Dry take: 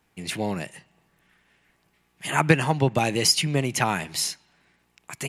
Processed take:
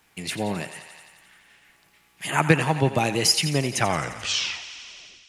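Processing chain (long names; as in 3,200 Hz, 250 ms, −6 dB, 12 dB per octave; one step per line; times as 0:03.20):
turntable brake at the end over 1.58 s
feedback echo with a high-pass in the loop 87 ms, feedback 69%, high-pass 380 Hz, level −12 dB
one half of a high-frequency compander encoder only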